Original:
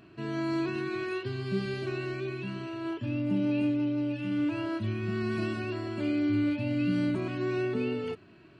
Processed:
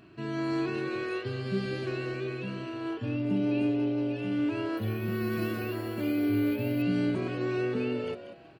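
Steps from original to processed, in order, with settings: on a send: frequency-shifting echo 0.188 s, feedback 30%, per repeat +120 Hz, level -12 dB; 4.77–6.82 on the sum: careless resampling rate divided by 3×, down none, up hold

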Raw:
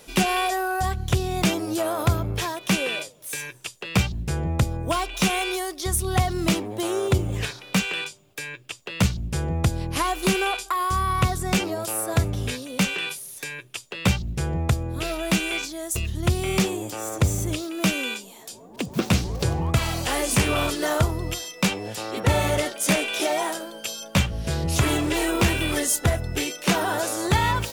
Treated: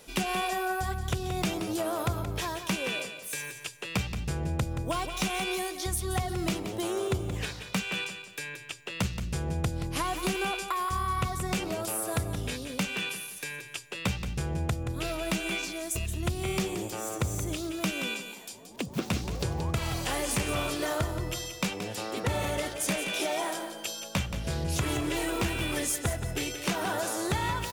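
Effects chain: compressor 2.5:1, threshold -24 dBFS, peak gain reduction 7 dB; feedback echo 0.176 s, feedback 32%, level -9.5 dB; gain -4 dB

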